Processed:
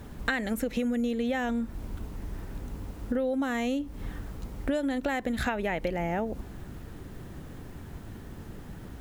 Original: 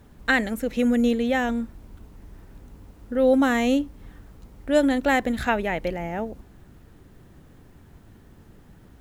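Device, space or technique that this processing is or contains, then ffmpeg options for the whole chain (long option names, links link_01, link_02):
serial compression, leveller first: -af "acompressor=threshold=-25dB:ratio=2,acompressor=threshold=-34dB:ratio=6,volume=7.5dB"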